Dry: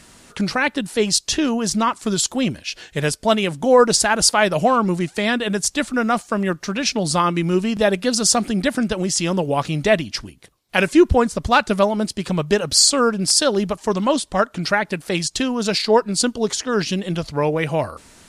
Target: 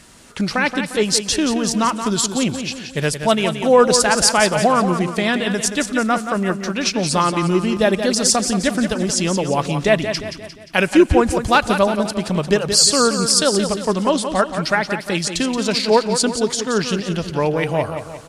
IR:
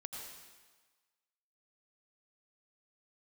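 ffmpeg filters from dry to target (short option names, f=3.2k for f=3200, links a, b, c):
-filter_complex "[0:a]asettb=1/sr,asplit=3[a][b][c];[a]atrim=end=11.304[d];[b]atrim=start=11.3:end=11.79,asetpts=PTS-STARTPTS,afade=t=in:d=0.004:c=qsin,afade=t=out:st=0.486:d=0.004:c=qsin,highshelf=f=11k:g=11.5[e];[c]atrim=start=11.786[f];[d][e]acrossfade=d=0.004:c1=hsin:c2=qsin[g];[g][f]acrossfade=d=0.004:c1=qsin:c2=hsin,aecho=1:1:176|352|528|704|880:0.376|0.177|0.083|0.039|0.0183,asplit=2[h][i];[1:a]atrim=start_sample=2205[j];[i][j]afir=irnorm=-1:irlink=0,volume=-17.5dB[k];[h][k]amix=inputs=2:normalize=0"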